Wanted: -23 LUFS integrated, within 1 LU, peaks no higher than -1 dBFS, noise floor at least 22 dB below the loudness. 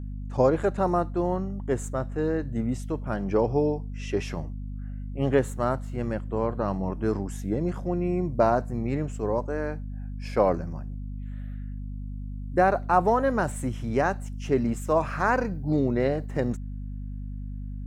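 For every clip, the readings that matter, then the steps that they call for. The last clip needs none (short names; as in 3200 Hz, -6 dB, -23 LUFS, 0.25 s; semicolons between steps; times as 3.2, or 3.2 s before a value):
hum 50 Hz; harmonics up to 250 Hz; hum level -32 dBFS; loudness -27.0 LUFS; peak -7.5 dBFS; loudness target -23.0 LUFS
-> de-hum 50 Hz, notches 5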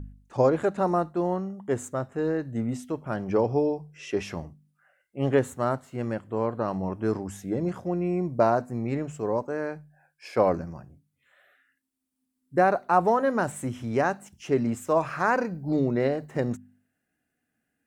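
hum none; loudness -27.0 LUFS; peak -7.5 dBFS; loudness target -23.0 LUFS
-> gain +4 dB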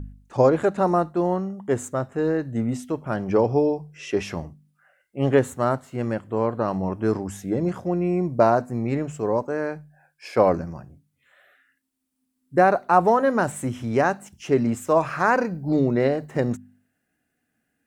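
loudness -23.0 LUFS; peak -3.5 dBFS; noise floor -76 dBFS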